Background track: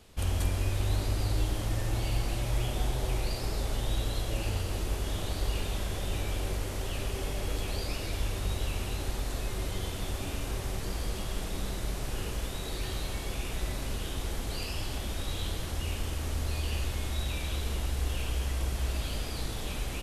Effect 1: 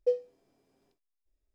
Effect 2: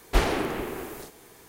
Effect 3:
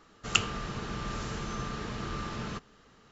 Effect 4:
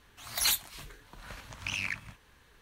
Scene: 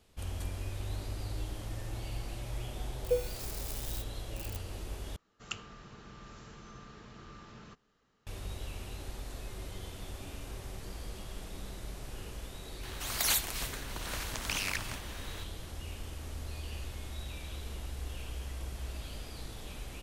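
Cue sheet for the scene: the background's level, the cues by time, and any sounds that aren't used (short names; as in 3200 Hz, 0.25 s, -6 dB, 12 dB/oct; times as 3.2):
background track -9 dB
3.04 add 1 -2.5 dB + switching spikes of -29 dBFS
5.16 replace with 3 -14.5 dB
12.83 add 4 -1.5 dB + spectral compressor 2:1
not used: 2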